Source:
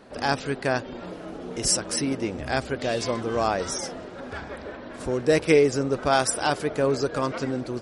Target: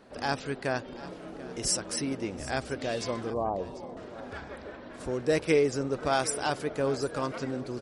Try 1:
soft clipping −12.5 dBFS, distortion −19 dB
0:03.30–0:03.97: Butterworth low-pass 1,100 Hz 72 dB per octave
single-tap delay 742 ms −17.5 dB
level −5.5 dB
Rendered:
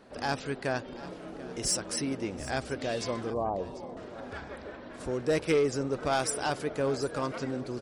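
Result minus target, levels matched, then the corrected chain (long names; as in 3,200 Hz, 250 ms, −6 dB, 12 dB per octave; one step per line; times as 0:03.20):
soft clipping: distortion +17 dB
soft clipping −2.5 dBFS, distortion −35 dB
0:03.30–0:03.97: Butterworth low-pass 1,100 Hz 72 dB per octave
single-tap delay 742 ms −17.5 dB
level −5.5 dB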